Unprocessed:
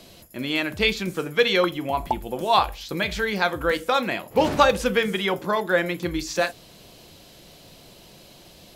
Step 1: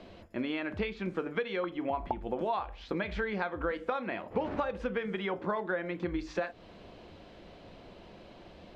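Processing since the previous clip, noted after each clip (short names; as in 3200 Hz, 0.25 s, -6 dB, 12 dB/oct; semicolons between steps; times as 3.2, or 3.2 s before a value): compressor 16:1, threshold -28 dBFS, peak gain reduction 18 dB; LPF 2000 Hz 12 dB/oct; bell 140 Hz -15 dB 0.22 oct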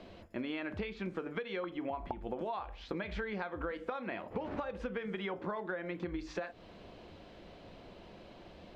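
compressor 4:1, threshold -33 dBFS, peak gain reduction 7 dB; gain -1.5 dB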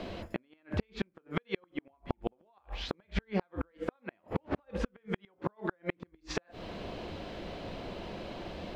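flipped gate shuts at -29 dBFS, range -41 dB; gain +11.5 dB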